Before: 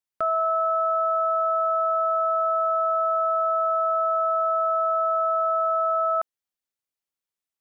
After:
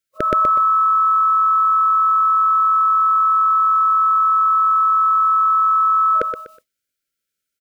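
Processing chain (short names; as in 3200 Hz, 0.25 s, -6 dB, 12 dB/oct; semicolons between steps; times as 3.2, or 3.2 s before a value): FFT band-reject 630–1300 Hz; feedback echo 0.123 s, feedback 27%, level -6 dB; formant shift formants -3 st; gain +8.5 dB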